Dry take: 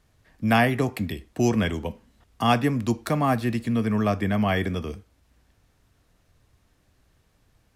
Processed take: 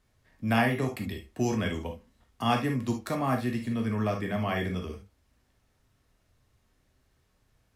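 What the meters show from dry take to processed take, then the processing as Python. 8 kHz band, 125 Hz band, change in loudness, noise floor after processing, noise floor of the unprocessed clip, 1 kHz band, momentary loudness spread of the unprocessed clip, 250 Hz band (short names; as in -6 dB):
-5.0 dB, -5.0 dB, -5.5 dB, -71 dBFS, -66 dBFS, -5.5 dB, 11 LU, -5.5 dB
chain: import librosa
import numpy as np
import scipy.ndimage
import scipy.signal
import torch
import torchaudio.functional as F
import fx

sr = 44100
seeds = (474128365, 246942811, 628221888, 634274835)

y = fx.rev_gated(x, sr, seeds[0], gate_ms=90, shape='flat', drr_db=2.0)
y = y * 10.0 ** (-7.0 / 20.0)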